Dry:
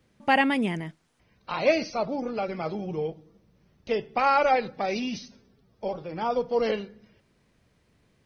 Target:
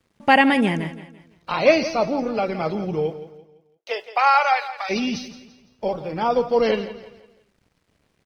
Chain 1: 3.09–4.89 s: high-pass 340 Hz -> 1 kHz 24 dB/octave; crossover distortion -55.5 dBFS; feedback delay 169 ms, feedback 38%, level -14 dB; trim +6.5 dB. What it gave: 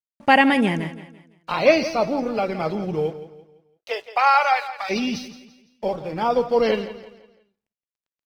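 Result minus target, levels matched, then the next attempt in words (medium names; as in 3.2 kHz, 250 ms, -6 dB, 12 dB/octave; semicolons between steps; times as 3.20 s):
crossover distortion: distortion +8 dB
3.09–4.89 s: high-pass 340 Hz -> 1 kHz 24 dB/octave; crossover distortion -65.5 dBFS; feedback delay 169 ms, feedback 38%, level -14 dB; trim +6.5 dB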